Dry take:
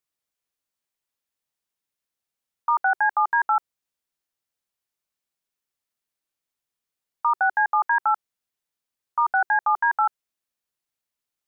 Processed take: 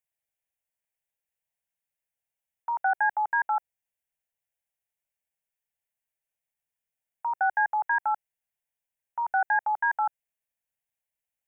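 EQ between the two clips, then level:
phaser with its sweep stopped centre 1,200 Hz, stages 6
−1.5 dB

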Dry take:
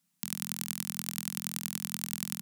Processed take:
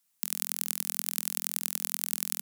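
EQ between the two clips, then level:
high-pass filter 460 Hz 12 dB per octave
high-shelf EQ 8,600 Hz +6.5 dB
0.0 dB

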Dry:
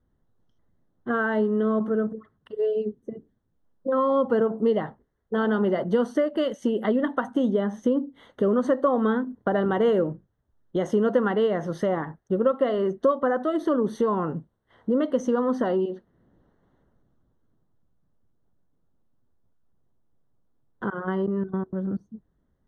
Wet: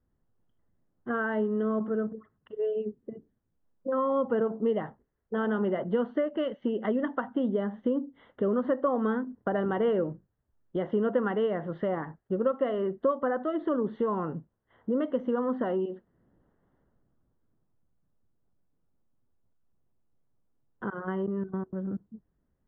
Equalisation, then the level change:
Butterworth low-pass 3,100 Hz 36 dB per octave
−5.0 dB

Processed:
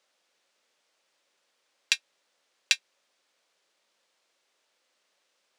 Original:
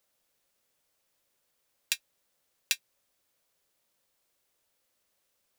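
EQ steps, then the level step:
high-pass filter 260 Hz 12 dB per octave
high-frequency loss of the air 110 metres
spectral tilt +1.5 dB per octave
+7.0 dB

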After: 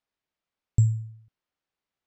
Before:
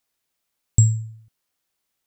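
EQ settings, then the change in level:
low-pass filter 5,500 Hz 12 dB per octave
high-shelf EQ 3,500 Hz −9.5 dB
−4.5 dB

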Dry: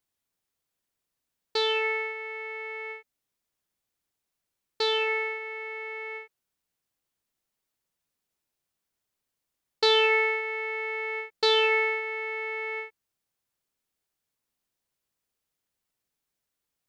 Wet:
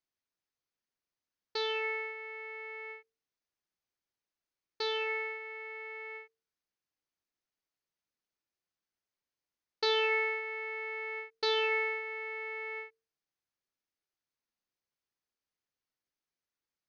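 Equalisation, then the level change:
Chebyshev low-pass with heavy ripple 6,500 Hz, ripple 3 dB
parametric band 340 Hz +3.5 dB 0.73 octaves
mains-hum notches 50/100/150/200/250/300/350/400/450 Hz
−6.0 dB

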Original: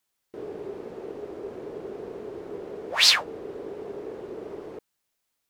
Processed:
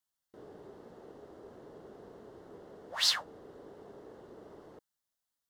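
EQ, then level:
parametric band 400 Hz −7.5 dB 0.75 octaves
parametric band 2,400 Hz −14 dB 0.28 octaves
−9.0 dB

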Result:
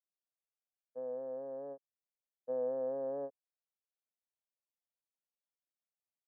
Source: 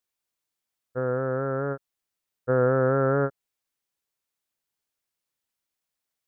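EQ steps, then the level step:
four-pole ladder band-pass 570 Hz, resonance 20%
phaser with its sweep stopped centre 370 Hz, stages 6
0.0 dB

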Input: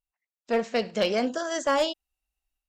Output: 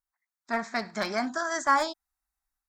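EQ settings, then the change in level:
bass and treble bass −9 dB, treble −12 dB
high-shelf EQ 2,200 Hz +9.5 dB
phaser with its sweep stopped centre 1,200 Hz, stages 4
+4.0 dB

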